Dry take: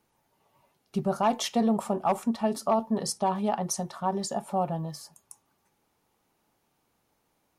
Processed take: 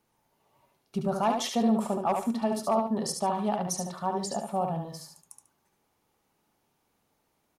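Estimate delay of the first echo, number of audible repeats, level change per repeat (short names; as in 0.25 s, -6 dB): 72 ms, 2, -12.0 dB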